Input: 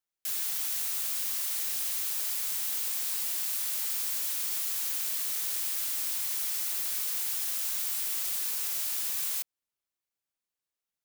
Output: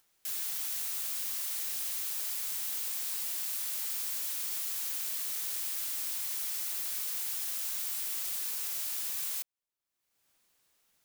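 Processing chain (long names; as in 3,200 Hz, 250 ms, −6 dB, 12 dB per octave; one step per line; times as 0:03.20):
upward compression, threshold −50 dBFS
level −3.5 dB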